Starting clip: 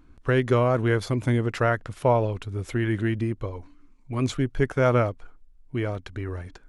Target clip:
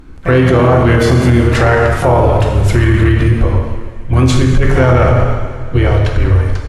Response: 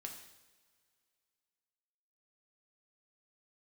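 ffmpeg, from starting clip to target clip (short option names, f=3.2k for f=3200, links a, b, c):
-filter_complex "[0:a]asplit=3[a][b][c];[b]asetrate=29433,aresample=44100,atempo=1.49831,volume=-9dB[d];[c]asetrate=58866,aresample=44100,atempo=0.749154,volume=-12dB[e];[a][d][e]amix=inputs=3:normalize=0[f];[1:a]atrim=start_sample=2205,asetrate=29547,aresample=44100[g];[f][g]afir=irnorm=-1:irlink=0,asubboost=boost=6:cutoff=76,aeval=exprs='0.398*(cos(1*acos(clip(val(0)/0.398,-1,1)))-cos(1*PI/2))+0.0141*(cos(5*acos(clip(val(0)/0.398,-1,1)))-cos(5*PI/2))':c=same,alimiter=level_in=18dB:limit=-1dB:release=50:level=0:latency=1,volume=-1dB"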